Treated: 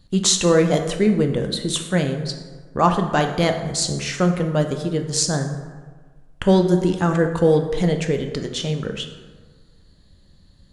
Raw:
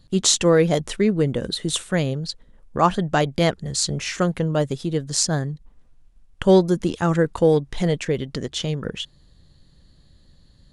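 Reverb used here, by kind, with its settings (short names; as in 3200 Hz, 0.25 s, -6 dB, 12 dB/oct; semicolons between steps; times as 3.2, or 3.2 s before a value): plate-style reverb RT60 1.5 s, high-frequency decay 0.5×, DRR 5 dB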